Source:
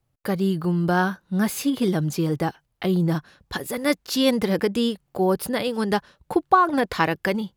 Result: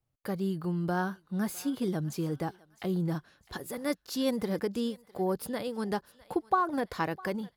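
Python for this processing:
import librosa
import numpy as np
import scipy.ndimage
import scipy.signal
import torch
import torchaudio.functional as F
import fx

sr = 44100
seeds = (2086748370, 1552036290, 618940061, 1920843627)

y = fx.dynamic_eq(x, sr, hz=2700.0, q=1.1, threshold_db=-40.0, ratio=4.0, max_db=-6)
y = fx.echo_thinned(y, sr, ms=655, feedback_pct=42, hz=750.0, wet_db=-19.5)
y = y * 10.0 ** (-9.0 / 20.0)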